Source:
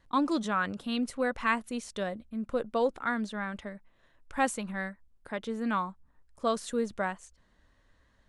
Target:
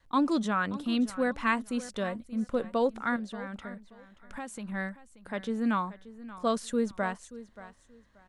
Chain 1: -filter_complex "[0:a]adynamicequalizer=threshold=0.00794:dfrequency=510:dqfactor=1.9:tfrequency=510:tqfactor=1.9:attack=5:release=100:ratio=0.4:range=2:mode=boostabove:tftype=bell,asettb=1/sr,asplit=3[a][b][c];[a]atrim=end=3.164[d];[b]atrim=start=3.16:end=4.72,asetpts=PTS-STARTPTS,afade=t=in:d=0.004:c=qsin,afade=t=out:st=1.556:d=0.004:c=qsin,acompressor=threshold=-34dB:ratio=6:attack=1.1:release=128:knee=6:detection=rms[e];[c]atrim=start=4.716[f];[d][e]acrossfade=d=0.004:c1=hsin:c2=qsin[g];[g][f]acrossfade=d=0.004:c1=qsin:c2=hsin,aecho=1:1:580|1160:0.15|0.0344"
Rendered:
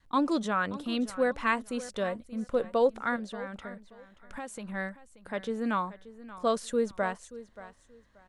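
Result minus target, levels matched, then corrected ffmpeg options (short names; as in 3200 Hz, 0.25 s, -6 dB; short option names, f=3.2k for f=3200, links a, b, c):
500 Hz band +3.0 dB
-filter_complex "[0:a]adynamicequalizer=threshold=0.00794:dfrequency=230:dqfactor=1.9:tfrequency=230:tqfactor=1.9:attack=5:release=100:ratio=0.4:range=2:mode=boostabove:tftype=bell,asettb=1/sr,asplit=3[a][b][c];[a]atrim=end=3.164[d];[b]atrim=start=3.16:end=4.72,asetpts=PTS-STARTPTS,afade=t=in:d=0.004:c=qsin,afade=t=out:st=1.556:d=0.004:c=qsin,acompressor=threshold=-34dB:ratio=6:attack=1.1:release=128:knee=6:detection=rms[e];[c]atrim=start=4.716[f];[d][e]acrossfade=d=0.004:c1=hsin:c2=qsin[g];[g][f]acrossfade=d=0.004:c1=qsin:c2=hsin,aecho=1:1:580|1160:0.15|0.0344"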